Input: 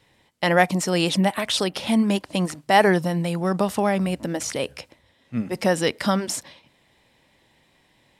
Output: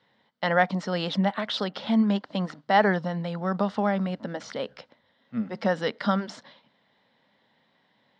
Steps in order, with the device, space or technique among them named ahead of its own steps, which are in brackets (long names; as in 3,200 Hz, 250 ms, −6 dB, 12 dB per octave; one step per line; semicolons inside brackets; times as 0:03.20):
kitchen radio (loudspeaker in its box 190–4,300 Hz, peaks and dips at 210 Hz +5 dB, 340 Hz −9 dB, 1,400 Hz +4 dB, 2,500 Hz −10 dB)
level −3.5 dB